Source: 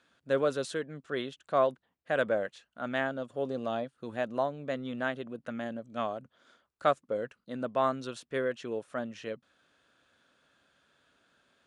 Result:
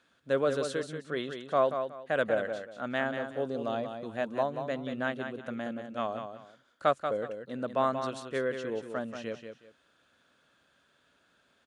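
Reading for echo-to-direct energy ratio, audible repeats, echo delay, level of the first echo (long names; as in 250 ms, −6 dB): −7.0 dB, 2, 184 ms, −7.5 dB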